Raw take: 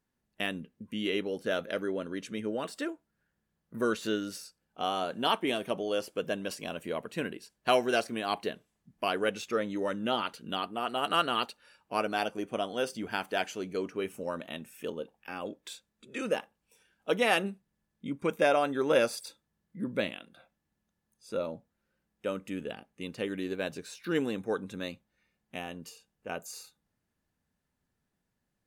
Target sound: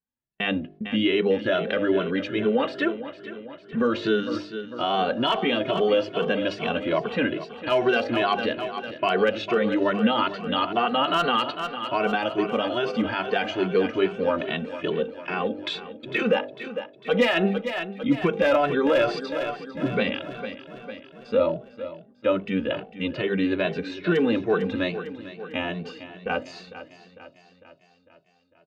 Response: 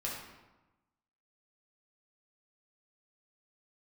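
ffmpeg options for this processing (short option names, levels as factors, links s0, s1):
-filter_complex "[0:a]agate=range=0.0562:threshold=0.00126:ratio=16:detection=peak,lowpass=f=3700:w=0.5412,lowpass=f=3700:w=1.3066,bandreject=f=50.29:t=h:w=4,bandreject=f=100.58:t=h:w=4,bandreject=f=150.87:t=h:w=4,bandreject=f=201.16:t=h:w=4,bandreject=f=251.45:t=h:w=4,bandreject=f=301.74:t=h:w=4,bandreject=f=352.03:t=h:w=4,bandreject=f=402.32:t=h:w=4,bandreject=f=452.61:t=h:w=4,bandreject=f=502.9:t=h:w=4,bandreject=f=553.19:t=h:w=4,bandreject=f=603.48:t=h:w=4,bandreject=f=653.77:t=h:w=4,bandreject=f=704.06:t=h:w=4,bandreject=f=754.35:t=h:w=4,bandreject=f=804.64:t=h:w=4,asettb=1/sr,asplit=3[s0][s1][s2];[s0]atrim=end=15.584[s3];[s1]atrim=start=15.58:end=16.23,asetpts=PTS-STARTPTS,afade=t=in:d=0.004:c=qsin,afade=t=out:st=0.646:d=0.004:c=qsin,acontrast=44[s4];[s2]atrim=start=16.226[s5];[s3][s4]acrossfade=d=0.004:c1=hsin:c2=qsin[s6];[s6][s5]acrossfade=d=0.004:c1=qsin:c2=hsin,aeval=exprs='clip(val(0),-1,0.106)':c=same,aecho=1:1:451|902|1353|1804|2255|2706:0.188|0.107|0.0612|0.0349|0.0199|0.0113,alimiter=level_in=15:limit=0.891:release=50:level=0:latency=1,asplit=2[s7][s8];[s8]adelay=2.2,afreqshift=2.4[s9];[s7][s9]amix=inputs=2:normalize=1,volume=0.376"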